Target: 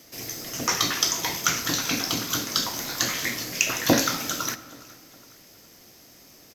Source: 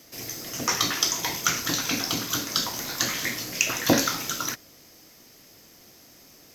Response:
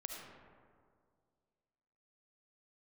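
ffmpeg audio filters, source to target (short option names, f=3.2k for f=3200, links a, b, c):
-filter_complex "[0:a]aecho=1:1:414|828|1242:0.0708|0.0319|0.0143,asplit=2[a][b];[1:a]atrim=start_sample=2205[c];[b][c]afir=irnorm=-1:irlink=0,volume=-9dB[d];[a][d]amix=inputs=2:normalize=0,volume=-1dB"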